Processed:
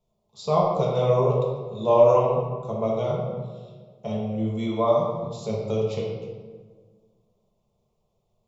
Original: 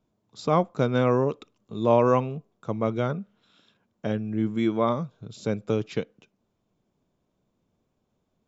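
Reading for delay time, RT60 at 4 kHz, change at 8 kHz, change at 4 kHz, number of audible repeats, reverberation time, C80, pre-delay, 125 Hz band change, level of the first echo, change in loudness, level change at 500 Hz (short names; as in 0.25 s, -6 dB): none, 1.0 s, n/a, +1.0 dB, none, 1.5 s, 3.5 dB, 5 ms, +2.0 dB, none, +2.0 dB, +4.5 dB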